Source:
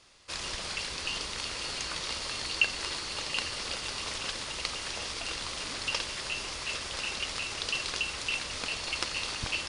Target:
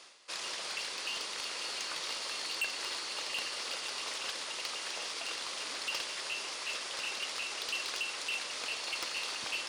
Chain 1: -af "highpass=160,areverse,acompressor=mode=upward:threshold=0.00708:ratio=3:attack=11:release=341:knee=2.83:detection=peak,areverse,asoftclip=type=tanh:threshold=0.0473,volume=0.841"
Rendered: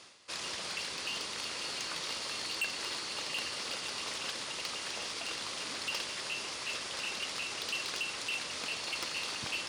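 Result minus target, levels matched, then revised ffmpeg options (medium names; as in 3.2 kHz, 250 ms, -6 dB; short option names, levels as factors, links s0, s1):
125 Hz band +11.5 dB
-af "highpass=380,areverse,acompressor=mode=upward:threshold=0.00708:ratio=3:attack=11:release=341:knee=2.83:detection=peak,areverse,asoftclip=type=tanh:threshold=0.0473,volume=0.841"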